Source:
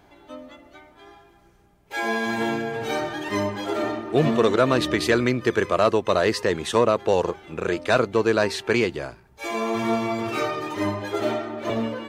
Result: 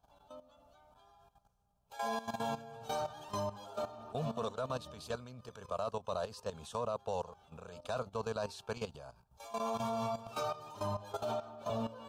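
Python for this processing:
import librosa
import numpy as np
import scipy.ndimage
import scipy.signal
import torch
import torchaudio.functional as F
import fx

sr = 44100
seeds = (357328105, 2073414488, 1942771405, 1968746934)

y = fx.rider(x, sr, range_db=5, speed_s=2.0)
y = fx.fixed_phaser(y, sr, hz=820.0, stages=4)
y = fx.level_steps(y, sr, step_db=14)
y = F.gain(torch.from_numpy(y), -7.5).numpy()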